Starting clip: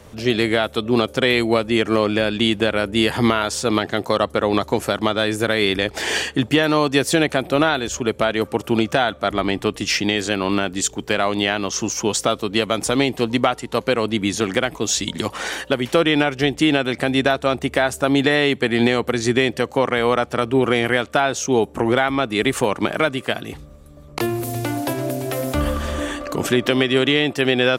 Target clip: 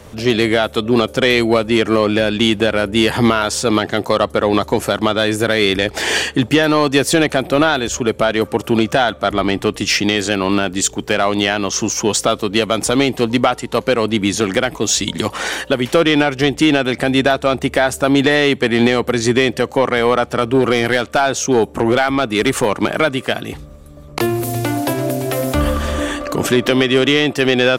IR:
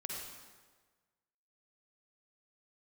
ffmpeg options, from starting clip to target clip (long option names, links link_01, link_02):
-filter_complex "[0:a]asettb=1/sr,asplit=3[link_01][link_02][link_03];[link_01]atrim=end=20.524[link_04];[link_02]atrim=start=20.52:end=22.89,asetpts=PTS-STARTPTS,afade=type=in:duration=0.004:curve=qsin,afade=type=out:start_time=2.366:duration=0.004:curve=qsin,asoftclip=type=hard:threshold=-10.5dB[link_05];[link_03]atrim=start=22.886[link_06];[link_04][link_05]acrossfade=duration=0.004:curve1=hsin:curve2=qsin[link_07];[link_07][link_06]acrossfade=duration=0.004:curve1=qsin:curve2=hsin,acontrast=53,volume=-1dB"